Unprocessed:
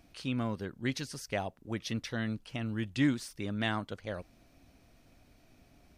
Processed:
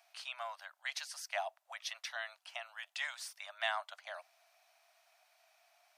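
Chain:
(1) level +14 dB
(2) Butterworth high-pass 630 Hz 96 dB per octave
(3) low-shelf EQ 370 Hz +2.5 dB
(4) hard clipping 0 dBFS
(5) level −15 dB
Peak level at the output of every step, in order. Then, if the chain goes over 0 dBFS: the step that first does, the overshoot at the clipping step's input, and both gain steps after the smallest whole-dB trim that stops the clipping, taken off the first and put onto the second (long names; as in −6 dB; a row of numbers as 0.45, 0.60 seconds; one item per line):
−3.5, −5.0, −5.0, −5.0, −20.0 dBFS
no step passes full scale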